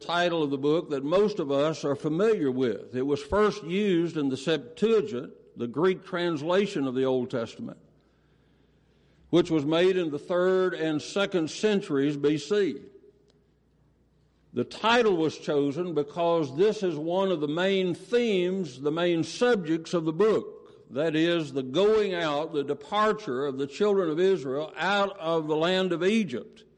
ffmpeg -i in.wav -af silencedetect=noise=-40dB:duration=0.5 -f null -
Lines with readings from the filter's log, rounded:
silence_start: 7.73
silence_end: 9.33 | silence_duration: 1.60
silence_start: 12.86
silence_end: 14.54 | silence_duration: 1.68